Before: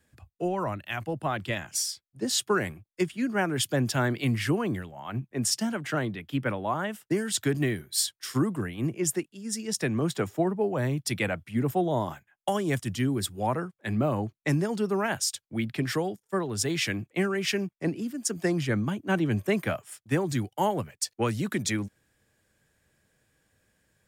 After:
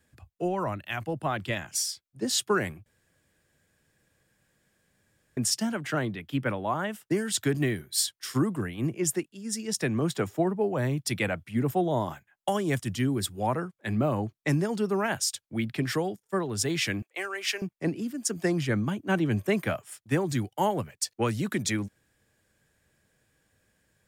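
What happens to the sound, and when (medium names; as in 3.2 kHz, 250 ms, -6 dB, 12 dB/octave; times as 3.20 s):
2.86–5.37 s: room tone
17.02–17.62 s: Bessel high-pass 670 Hz, order 4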